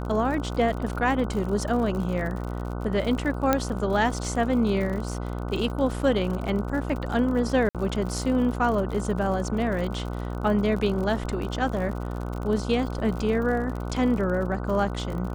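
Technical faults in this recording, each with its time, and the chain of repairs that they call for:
buzz 60 Hz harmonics 25 -31 dBFS
crackle 56/s -32 dBFS
3.53 pop -7 dBFS
7.69–7.75 gap 57 ms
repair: de-click; de-hum 60 Hz, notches 25; interpolate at 7.69, 57 ms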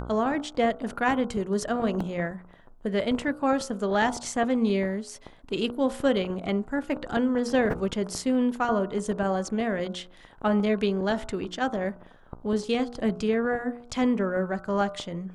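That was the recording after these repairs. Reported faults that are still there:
3.53 pop

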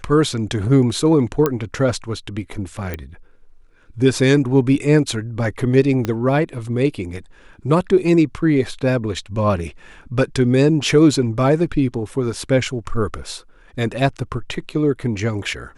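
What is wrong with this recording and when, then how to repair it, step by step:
1.46 pop -5 dBFS
2.94 pop -12 dBFS
6.05 pop -9 dBFS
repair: de-click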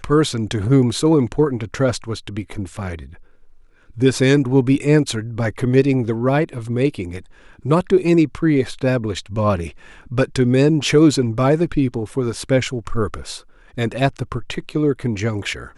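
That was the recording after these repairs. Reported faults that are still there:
2.94 pop
6.05 pop

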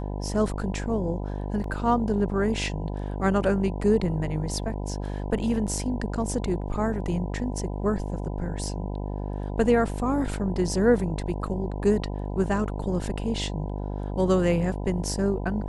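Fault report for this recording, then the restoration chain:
buzz 50 Hz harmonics 20 -31 dBFS
1.64 gap 2.6 ms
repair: de-hum 50 Hz, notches 20; interpolate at 1.64, 2.6 ms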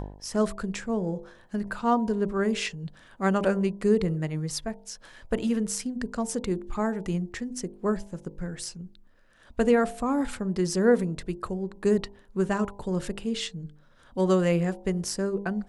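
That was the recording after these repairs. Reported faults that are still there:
none

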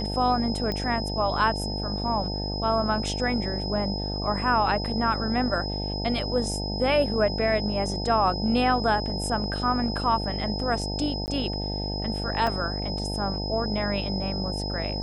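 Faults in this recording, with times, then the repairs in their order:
buzz 50 Hz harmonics 18 -31 dBFS
tone 5100 Hz -33 dBFS
0.72 pop -17 dBFS
11.26–11.28 gap 19 ms
12.47 gap 3 ms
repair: de-click; notch 5100 Hz, Q 30; de-hum 50 Hz, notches 18; interpolate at 11.26, 19 ms; interpolate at 12.47, 3 ms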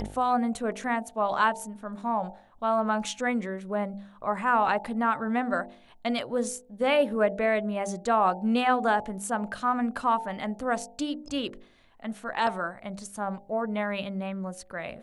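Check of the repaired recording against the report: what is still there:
none

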